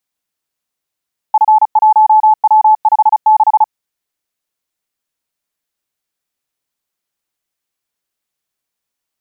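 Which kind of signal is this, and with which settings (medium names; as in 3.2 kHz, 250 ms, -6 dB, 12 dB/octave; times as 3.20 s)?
Morse "F1W56" 35 wpm 863 Hz -4 dBFS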